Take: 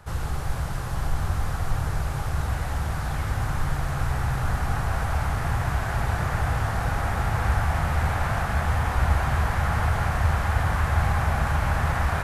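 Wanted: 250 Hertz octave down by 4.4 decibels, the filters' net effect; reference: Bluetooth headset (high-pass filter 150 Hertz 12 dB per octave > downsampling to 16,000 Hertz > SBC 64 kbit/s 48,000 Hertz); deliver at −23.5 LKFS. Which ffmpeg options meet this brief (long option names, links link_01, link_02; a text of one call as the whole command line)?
ffmpeg -i in.wav -af "highpass=150,equalizer=frequency=250:width_type=o:gain=-4.5,aresample=16000,aresample=44100,volume=7dB" -ar 48000 -c:a sbc -b:a 64k out.sbc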